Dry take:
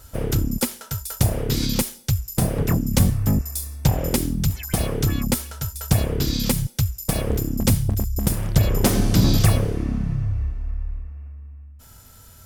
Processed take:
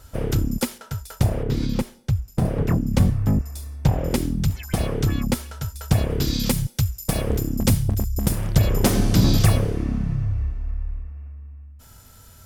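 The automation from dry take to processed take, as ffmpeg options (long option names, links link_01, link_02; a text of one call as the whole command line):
ffmpeg -i in.wav -af "asetnsamples=nb_out_samples=441:pad=0,asendcmd='0.78 lowpass f 2600;1.43 lowpass f 1200;2.45 lowpass f 2100;4.1 lowpass f 4100;6.1 lowpass f 11000',lowpass=frequency=5700:poles=1" out.wav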